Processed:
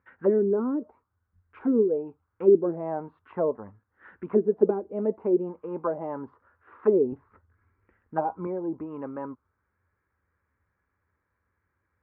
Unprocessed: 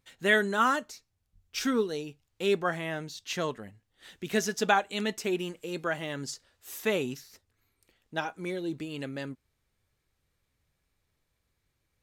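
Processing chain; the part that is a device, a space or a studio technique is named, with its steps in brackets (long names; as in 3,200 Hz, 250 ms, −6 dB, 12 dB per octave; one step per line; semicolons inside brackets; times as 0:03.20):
envelope filter bass rig (envelope-controlled low-pass 350–1,700 Hz down, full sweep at −23 dBFS; loudspeaker in its box 75–2,000 Hz, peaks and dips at 82 Hz +7 dB, 140 Hz −9 dB, 690 Hz −6 dB, 1,000 Hz +4 dB, 1,800 Hz −6 dB)
0:07.12–0:08.47: low-shelf EQ 180 Hz +10 dB
level +1.5 dB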